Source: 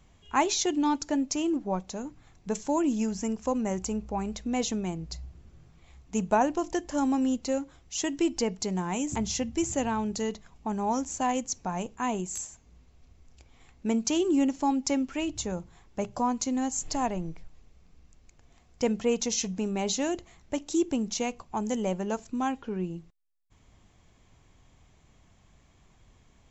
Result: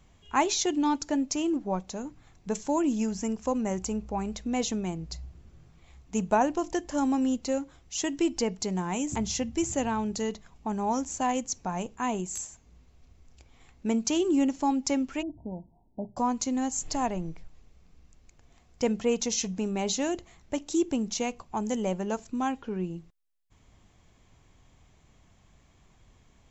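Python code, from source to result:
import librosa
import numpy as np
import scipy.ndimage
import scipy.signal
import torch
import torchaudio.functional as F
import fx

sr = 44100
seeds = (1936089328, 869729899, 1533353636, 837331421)

y = fx.cheby_ripple(x, sr, hz=960.0, ripple_db=9, at=(15.21, 16.16), fade=0.02)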